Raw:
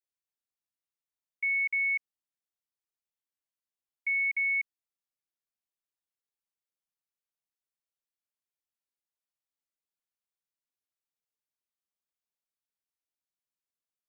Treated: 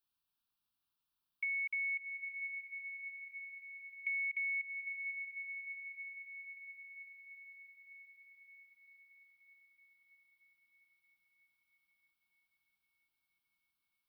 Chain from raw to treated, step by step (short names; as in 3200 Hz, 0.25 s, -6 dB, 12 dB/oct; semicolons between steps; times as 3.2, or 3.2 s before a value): fixed phaser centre 2000 Hz, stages 6; on a send: diffused feedback echo 0.572 s, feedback 72%, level -13 dB; on the sum: compressor, threshold -44 dBFS, peak gain reduction 8 dB; gain +8.5 dB